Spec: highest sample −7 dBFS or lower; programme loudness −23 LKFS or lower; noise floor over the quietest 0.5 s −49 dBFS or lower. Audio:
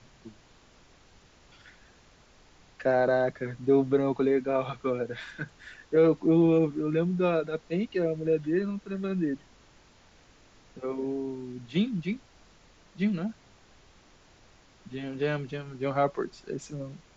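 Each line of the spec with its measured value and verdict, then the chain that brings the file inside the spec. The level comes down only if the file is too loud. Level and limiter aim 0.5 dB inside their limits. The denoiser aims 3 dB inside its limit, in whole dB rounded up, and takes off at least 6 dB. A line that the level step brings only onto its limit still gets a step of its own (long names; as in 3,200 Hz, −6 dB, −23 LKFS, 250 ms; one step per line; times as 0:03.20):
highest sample −11.5 dBFS: in spec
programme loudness −28.5 LKFS: in spec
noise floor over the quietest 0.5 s −58 dBFS: in spec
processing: no processing needed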